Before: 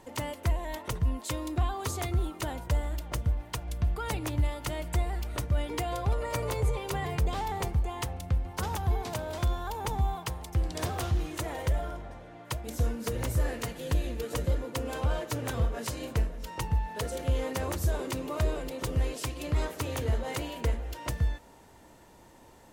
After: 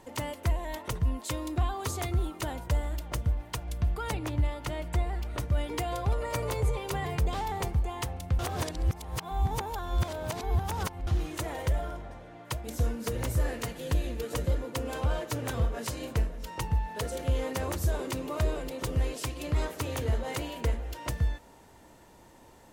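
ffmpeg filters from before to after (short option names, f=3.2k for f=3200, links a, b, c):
-filter_complex "[0:a]asettb=1/sr,asplit=3[a][b][c];[a]atrim=end=4.114[d];[b]atrim=start=4.11:end=5.4,asetpts=PTS-STARTPTS,afade=t=in:d=0.004:c=qsin,afade=t=out:st=1.286:d=0.004:c=qsin,highshelf=f=5.4k:g=-8[e];[c]atrim=start=5.396[f];[d][e]acrossfade=d=0.004:c1=hsin:c2=qsin[g];[g][f]acrossfade=d=0.004:c1=qsin:c2=hsin,asplit=3[h][i][j];[h]atrim=end=8.392[k];[i]atrim=start=8.388:end=11.072,asetpts=PTS-STARTPTS,areverse[l];[j]atrim=start=11.068[m];[k][l]acrossfade=d=0.004:c1=hsin:c2=hsin[n];[n][m]acrossfade=d=0.004:c1=hsin:c2=hsin"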